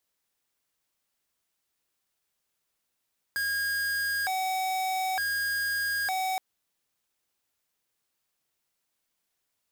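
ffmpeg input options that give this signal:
-f lavfi -i "aevalsrc='0.0355*(2*lt(mod((1192*t+438/0.55*(0.5-abs(mod(0.55*t,1)-0.5))),1),0.5)-1)':d=3.02:s=44100"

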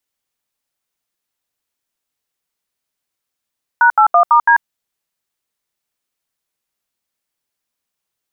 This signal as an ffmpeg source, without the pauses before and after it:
-f lavfi -i "aevalsrc='0.355*clip(min(mod(t,0.166),0.091-mod(t,0.166))/0.002,0,1)*(eq(floor(t/0.166),0)*(sin(2*PI*941*mod(t,0.166))+sin(2*PI*1477*mod(t,0.166)))+eq(floor(t/0.166),1)*(sin(2*PI*852*mod(t,0.166))+sin(2*PI*1336*mod(t,0.166)))+eq(floor(t/0.166),2)*(sin(2*PI*697*mod(t,0.166))+sin(2*PI*1209*mod(t,0.166)))+eq(floor(t/0.166),3)*(sin(2*PI*941*mod(t,0.166))+sin(2*PI*1209*mod(t,0.166)))+eq(floor(t/0.166),4)*(sin(2*PI*941*mod(t,0.166))+sin(2*PI*1633*mod(t,0.166))))':d=0.83:s=44100"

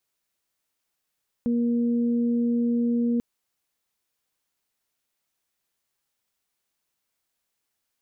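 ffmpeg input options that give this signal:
-f lavfi -i "aevalsrc='0.0944*sin(2*PI*237*t)+0.0251*sin(2*PI*474*t)':d=1.74:s=44100"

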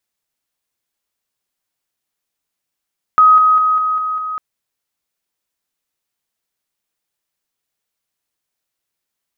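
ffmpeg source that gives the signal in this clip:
-f lavfi -i "aevalsrc='pow(10,(-5-3*floor(t/0.2))/20)*sin(2*PI*1260*t)':d=1.2:s=44100"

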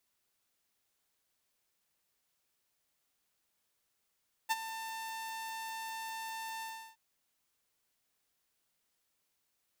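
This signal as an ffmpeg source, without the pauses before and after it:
-f lavfi -i "aevalsrc='0.0631*(2*mod(895*t,1)-1)':d=2.471:s=44100,afade=t=in:d=0.023,afade=t=out:st=0.023:d=0.032:silence=0.224,afade=t=out:st=2.13:d=0.341"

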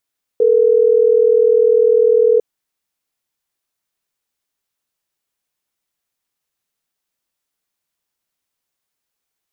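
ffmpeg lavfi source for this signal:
-f lavfi -i "aevalsrc='0.266*(sin(2*PI*440*t)+sin(2*PI*480*t))*clip(min(mod(t,6),2-mod(t,6))/0.005,0,1)':d=3.12:s=44100"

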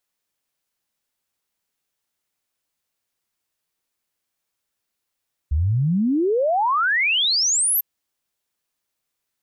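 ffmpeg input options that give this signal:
-f lavfi -i "aevalsrc='0.15*clip(min(t,2.3-t)/0.01,0,1)*sin(2*PI*68*2.3/log(13000/68)*(exp(log(13000/68)*t/2.3)-1))':d=2.3:s=44100"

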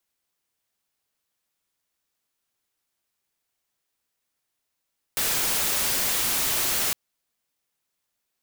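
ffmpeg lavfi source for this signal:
-f lavfi -i "anoisesrc=c=white:a=0.103:d=1.76:r=44100:seed=1"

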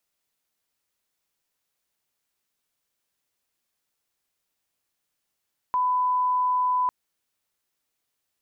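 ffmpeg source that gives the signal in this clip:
-f lavfi -i "sine=f=1000:d=1.15:r=44100,volume=-1.94dB"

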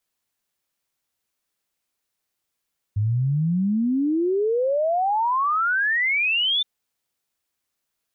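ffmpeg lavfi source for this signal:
-f lavfi -i "aevalsrc='0.119*clip(min(t,3.67-t)/0.01,0,1)*sin(2*PI*100*3.67/log(3600/100)*(exp(log(3600/100)*t/3.67)-1))':d=3.67:s=44100"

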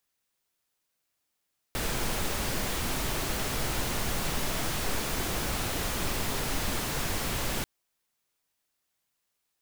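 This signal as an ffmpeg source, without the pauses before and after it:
-f lavfi -i "anoisesrc=c=pink:a=0.162:d=5.89:r=44100:seed=1"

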